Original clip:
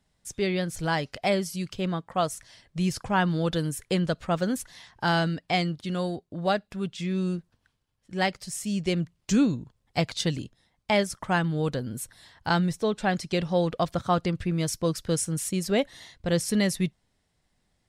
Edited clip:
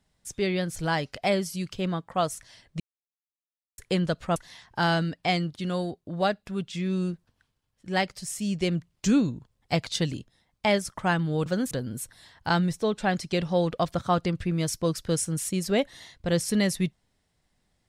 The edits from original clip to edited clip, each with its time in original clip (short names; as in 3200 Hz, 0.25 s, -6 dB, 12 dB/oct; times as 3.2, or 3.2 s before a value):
2.8–3.78 mute
4.36–4.61 move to 11.71